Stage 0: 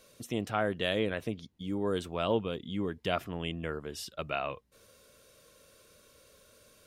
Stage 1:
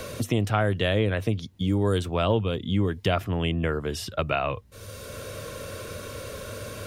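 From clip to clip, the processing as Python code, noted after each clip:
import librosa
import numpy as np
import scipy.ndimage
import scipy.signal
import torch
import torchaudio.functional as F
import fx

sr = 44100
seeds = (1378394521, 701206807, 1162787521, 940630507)

y = fx.peak_eq(x, sr, hz=99.0, db=12.0, octaves=0.56)
y = fx.band_squash(y, sr, depth_pct=70)
y = y * librosa.db_to_amplitude(6.5)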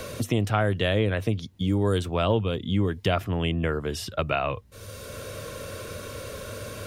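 y = x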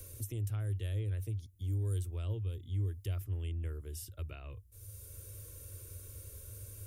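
y = fx.curve_eq(x, sr, hz=(100.0, 180.0, 350.0, 740.0, 2100.0, 4100.0, 11000.0), db=(0, -25, -12, -27, -19, -17, 4))
y = y * librosa.db_to_amplitude(-5.5)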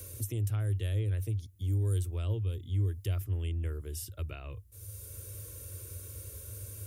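y = scipy.signal.sosfilt(scipy.signal.butter(2, 59.0, 'highpass', fs=sr, output='sos'), x)
y = y * librosa.db_to_amplitude(5.0)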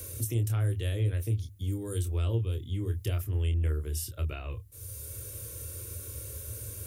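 y = fx.hum_notches(x, sr, base_hz=50, count=2)
y = fx.doubler(y, sr, ms=26.0, db=-7.0)
y = y * librosa.db_to_amplitude(4.0)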